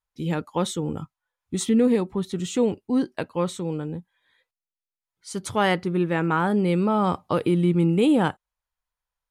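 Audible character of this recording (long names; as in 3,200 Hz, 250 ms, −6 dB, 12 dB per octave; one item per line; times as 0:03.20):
background noise floor −92 dBFS
spectral slope −6.0 dB per octave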